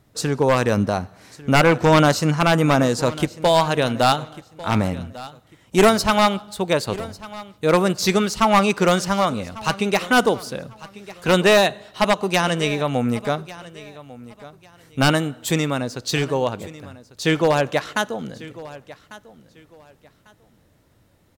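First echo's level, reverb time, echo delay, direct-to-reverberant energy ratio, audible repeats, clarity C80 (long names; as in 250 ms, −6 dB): −18.5 dB, no reverb audible, 1,147 ms, no reverb audible, 2, no reverb audible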